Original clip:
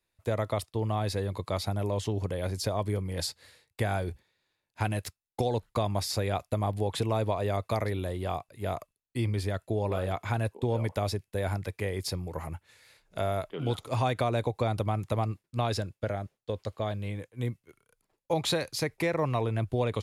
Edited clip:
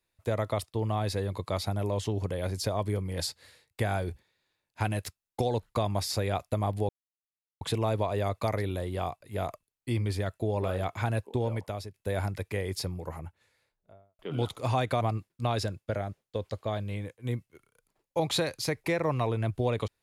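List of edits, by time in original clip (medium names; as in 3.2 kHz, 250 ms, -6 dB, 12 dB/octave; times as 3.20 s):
6.89 s: insert silence 0.72 s
10.62–11.22 s: fade out, to -13 dB
11.98–13.47 s: studio fade out
14.29–15.15 s: delete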